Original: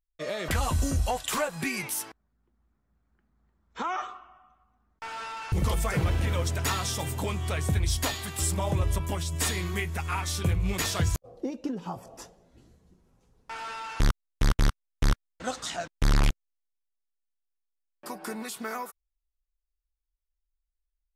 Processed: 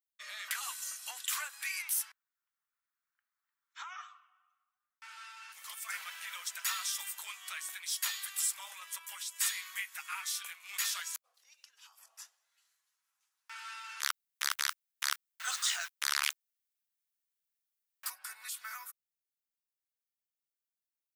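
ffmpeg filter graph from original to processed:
-filter_complex "[0:a]asettb=1/sr,asplit=3[s0][s1][s2];[s0]atrim=end=3.844[s3];[s1]atrim=start=3.84:end=5.89,asetpts=PTS-STARTPTS,afade=t=in:d=0.004:c=qsin,afade=t=out:st=2.046:d=0.004:c=qsin,highpass=300,flanger=delay=4.9:depth=7.3:regen=62:speed=1:shape=sinusoidal[s4];[s2]atrim=start=5.886[s5];[s3][s4]acrossfade=d=0.004:c1=hsin:c2=qsin[s6];[s6][s5]acrossfade=d=0.004:c1=qsin:c2=hsin,asettb=1/sr,asplit=3[s7][s8][s9];[s7]atrim=end=11.344[s10];[s8]atrim=start=11.34:end=11.99,asetpts=PTS-STARTPTS,afade=t=in:d=0.004:c=qsin,afade=t=out:st=0.646:d=0.004:c=qsin,tiltshelf=f=1300:g=-8,acompressor=threshold=0.00562:ratio=16:attack=3.2:release=140:knee=1:detection=peak[s11];[s9]atrim=start=11.986[s12];[s10][s11]acrossfade=d=0.004:c1=hsin:c2=qsin[s13];[s13][s12]acrossfade=d=0.004:c1=qsin:c2=hsin,asettb=1/sr,asplit=3[s14][s15][s16];[s14]atrim=end=14.034[s17];[s15]atrim=start=14.03:end=18.1,asetpts=PTS-STARTPTS,afade=t=in:d=0.004:c=qsin,afade=t=out:st=4.066:d=0.004:c=qsin,aeval=exprs='val(0)+0.5*0.00596*sgn(val(0))':c=same,highpass=f=410:w=0.5412,highpass=f=410:w=1.3066,acontrast=73[s18];[s16]atrim=start=18.096[s19];[s17][s18]acrossfade=d=0.004:c1=hsin:c2=qsin[s20];[s20][s19]acrossfade=d=0.004:c1=qsin:c2=hsin,highpass=f=1300:w=0.5412,highpass=f=1300:w=1.3066,highshelf=f=11000:g=10.5,volume=0.562"

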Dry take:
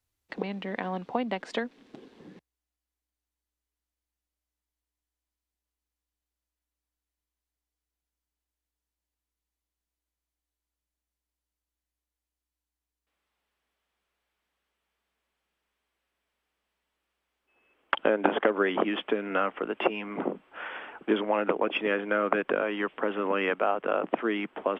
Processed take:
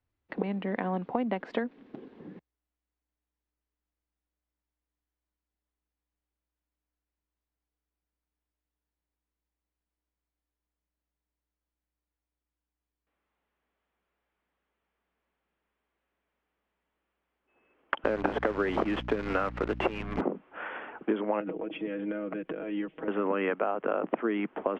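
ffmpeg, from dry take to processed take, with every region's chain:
-filter_complex "[0:a]asettb=1/sr,asplit=3[s0][s1][s2];[s0]atrim=end=18.044[s3];[s1]atrim=start=18.04:end=20.21,asetpts=PTS-STARTPTS,afade=t=in:d=0.004:c=qsin,afade=t=out:st=2.166:d=0.004:c=qsin,equalizer=f=2600:t=o:w=2.9:g=2.5,acrusher=bits=6:dc=4:mix=0:aa=0.000001,aeval=exprs='val(0)+0.01*(sin(2*PI*60*n/s)+sin(2*PI*2*60*n/s)/2+sin(2*PI*3*60*n/s)/3+sin(2*PI*4*60*n/s)/4+sin(2*PI*5*60*n/s)/5)':c=same[s4];[s2]atrim=start=20.206[s5];[s3][s4]acrossfade=d=0.004:c1=hsin:c2=qsin[s6];[s6][s5]acrossfade=d=0.004:c1=qsin:c2=hsin,asettb=1/sr,asplit=3[s7][s8][s9];[s7]atrim=end=21.404[s10];[s8]atrim=start=21.4:end=23.08,asetpts=PTS-STARTPTS,afade=t=in:d=0.004:c=qsin,afade=t=out:st=1.676:d=0.004:c=qsin,equalizer=f=1100:t=o:w=1.8:g=-14.5,acompressor=threshold=0.02:ratio=10:attack=3.2:release=140:knee=1:detection=peak,aecho=1:1:6.3:0.76,atrim=end_sample=74088[s11];[s9]atrim=start=23.076[s12];[s10][s11]acrossfade=d=0.004:c1=hsin:c2=qsin[s13];[s13][s12]acrossfade=d=0.004:c1=qsin:c2=hsin,lowpass=2300,equalizer=f=220:t=o:w=2.6:g=4,acompressor=threshold=0.0631:ratio=6"

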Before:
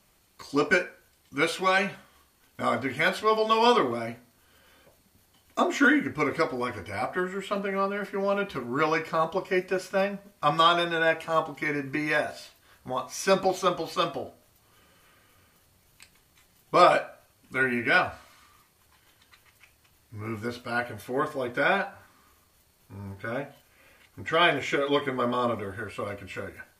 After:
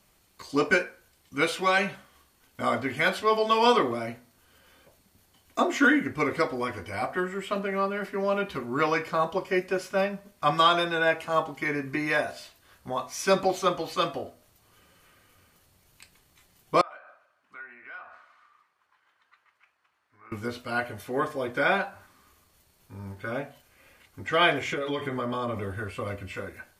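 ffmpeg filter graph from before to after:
-filter_complex "[0:a]asettb=1/sr,asplit=3[s0][s1][s2];[s0]atrim=end=16.814[s3];[s1]atrim=start=16.81:end=20.32,asetpts=PTS-STARTPTS,afade=t=in:d=0.004:c=qsin,afade=t=out:st=3.506:d=0.004:c=qsin,acompressor=threshold=0.0126:ratio=5:attack=3.2:release=140:knee=1:detection=peak,bandpass=f=1300:t=q:w=1.7,aecho=1:1:286:0.0841,atrim=end_sample=154791[s4];[s2]atrim=start=20.316[s5];[s3][s4]acrossfade=d=0.004:c1=hsin:c2=qsin[s6];[s6][s5]acrossfade=d=0.004:c1=qsin:c2=hsin,asettb=1/sr,asplit=3[s7][s8][s9];[s7]atrim=end=24.654[s10];[s8]atrim=start=24.65:end=26.33,asetpts=PTS-STARTPTS,afade=t=in:d=0.004:c=qsin,afade=t=out:st=1.676:d=0.004:c=qsin,equalizer=f=95:t=o:w=1.7:g=6,acompressor=threshold=0.0501:ratio=5:attack=3.2:release=140:knee=1:detection=peak[s11];[s9]atrim=start=26.326[s12];[s10][s11]acrossfade=d=0.004:c1=hsin:c2=qsin[s13];[s13][s12]acrossfade=d=0.004:c1=qsin:c2=hsin"

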